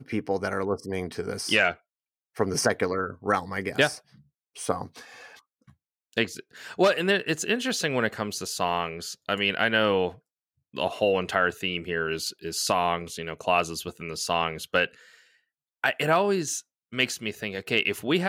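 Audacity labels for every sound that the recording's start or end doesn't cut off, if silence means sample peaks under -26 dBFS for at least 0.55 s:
2.400000	3.910000	sound
4.610000	4.840000	sound
6.170000	10.080000	sound
10.770000	14.850000	sound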